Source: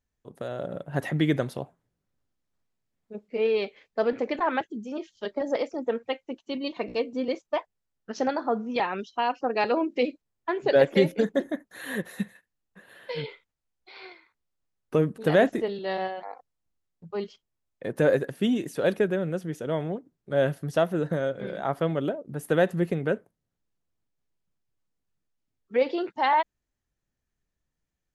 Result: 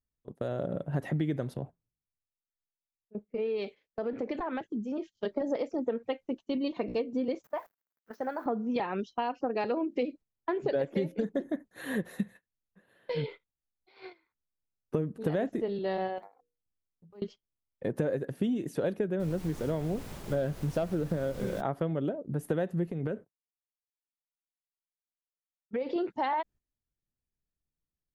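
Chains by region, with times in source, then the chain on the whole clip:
0:01.54–0:05.15: downward compressor 4 to 1, threshold −31 dBFS + multiband upward and downward expander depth 70%
0:07.44–0:08.46: converter with a step at zero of −41.5 dBFS + high-pass filter 1,300 Hz 6 dB per octave + flat-topped bell 5,000 Hz −14 dB 2.4 octaves
0:16.18–0:17.22: one scale factor per block 7 bits + mains-hum notches 60/120/180/240/300/360/420/480 Hz + downward compressor 5 to 1, threshold −45 dBFS
0:19.19–0:21.60: hard clipping −15.5 dBFS + background noise pink −43 dBFS
0:22.87–0:25.96: downward expander −54 dBFS + downward compressor 4 to 1, threshold −30 dBFS
whole clip: noise gate −44 dBFS, range −12 dB; tilt shelving filter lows +5 dB, about 640 Hz; downward compressor, threshold −27 dBFS

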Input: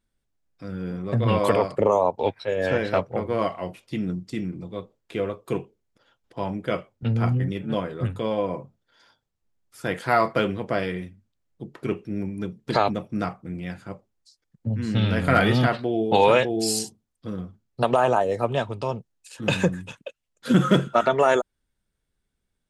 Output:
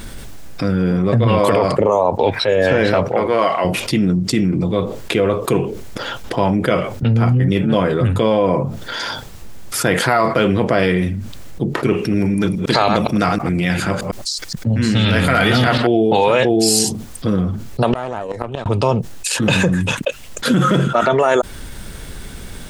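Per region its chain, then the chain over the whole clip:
0:03.08–0:03.65: high-pass filter 610 Hz 6 dB per octave + high-shelf EQ 8,800 Hz −7 dB
0:11.93–0:15.87: delay that plays each chunk backwards 104 ms, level −9 dB + tilt shelving filter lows −3.5 dB, about 1,300 Hz
0:17.92–0:18.66: tube saturation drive 15 dB, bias 0.8 + gate with flip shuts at −18 dBFS, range −37 dB
whole clip: boost into a limiter +13 dB; envelope flattener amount 70%; level −6.5 dB

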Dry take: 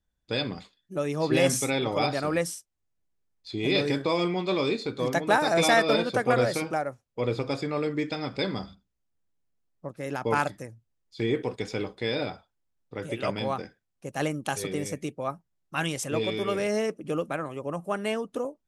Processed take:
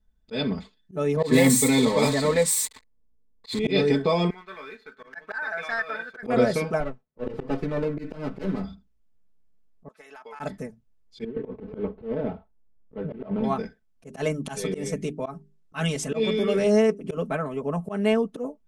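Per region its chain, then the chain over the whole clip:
0:01.16–0:03.59: spike at every zero crossing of −17 dBFS + low-pass that shuts in the quiet parts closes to 670 Hz, open at −17.5 dBFS + EQ curve with evenly spaced ripples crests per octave 1, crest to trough 11 dB
0:04.30–0:06.23: resonant band-pass 1,600 Hz, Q 5.8 + leveller curve on the samples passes 1
0:06.80–0:08.64: band-pass filter 110–2,800 Hz + notch comb filter 220 Hz + windowed peak hold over 9 samples
0:09.88–0:10.40: high-pass filter 950 Hz + downward compressor 3 to 1, threshold −47 dBFS + high-shelf EQ 11,000 Hz −6 dB
0:11.24–0:13.44: running median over 25 samples + compressor whose output falls as the input rises −31 dBFS, ratio −0.5 + high-frequency loss of the air 410 metres
0:14.07–0:17.17: low-pass filter 10,000 Hz + high-shelf EQ 4,200 Hz +5.5 dB + mains-hum notches 50/100/150/200/250/300/350/400 Hz
whole clip: spectral tilt −2 dB per octave; comb filter 4.6 ms, depth 97%; volume swells 107 ms

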